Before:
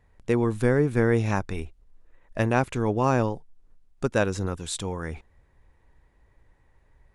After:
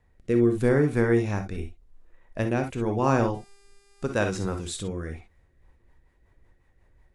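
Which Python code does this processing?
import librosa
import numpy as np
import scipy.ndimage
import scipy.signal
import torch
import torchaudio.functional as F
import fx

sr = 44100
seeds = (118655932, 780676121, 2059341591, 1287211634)

y = fx.dmg_buzz(x, sr, base_hz=400.0, harmonics=28, level_db=-58.0, tilt_db=-2, odd_only=False, at=(3.33, 4.78), fade=0.02)
y = fx.rev_gated(y, sr, seeds[0], gate_ms=80, shape='rising', drr_db=5.5)
y = fx.rotary_switch(y, sr, hz=0.85, then_hz=5.5, switch_at_s=5.07)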